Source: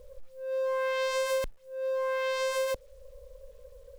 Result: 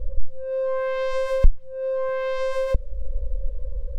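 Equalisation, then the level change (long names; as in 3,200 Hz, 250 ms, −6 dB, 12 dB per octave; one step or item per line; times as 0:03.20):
RIAA equalisation playback
low-shelf EQ 200 Hz +7 dB
+2.0 dB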